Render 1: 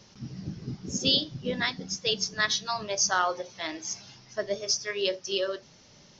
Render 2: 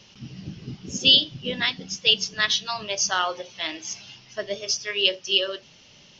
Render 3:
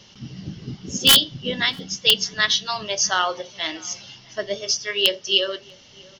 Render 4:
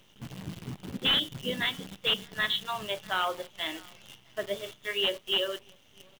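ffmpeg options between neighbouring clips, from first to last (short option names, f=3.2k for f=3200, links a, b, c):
-af "equalizer=f=2.9k:w=2.3:g=13.5"
-filter_complex "[0:a]bandreject=f=2.5k:w=8.4,aeval=exprs='(mod(2*val(0)+1,2)-1)/2':c=same,asplit=2[a][b];[b]adelay=641.4,volume=-25dB,highshelf=f=4k:g=-14.4[c];[a][c]amix=inputs=2:normalize=0,volume=3dB"
-af "aresample=8000,volume=15.5dB,asoftclip=hard,volume=-15.5dB,aresample=44100,acrusher=bits=7:dc=4:mix=0:aa=0.000001,volume=-6dB"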